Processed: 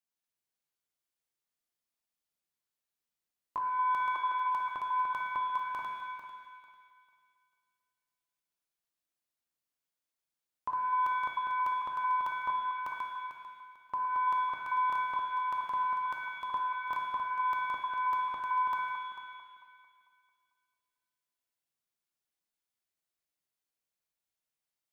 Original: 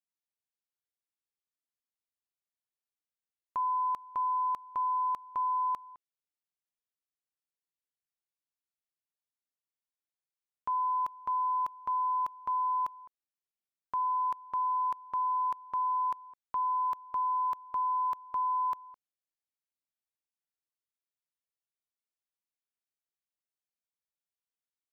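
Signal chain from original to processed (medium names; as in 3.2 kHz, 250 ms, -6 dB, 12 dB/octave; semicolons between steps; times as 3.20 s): backward echo that repeats 223 ms, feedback 49%, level -4 dB; 4.15–4.55 s: steep high-pass 310 Hz 48 dB/octave; pitch-shifted reverb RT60 1.2 s, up +7 st, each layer -8 dB, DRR 3 dB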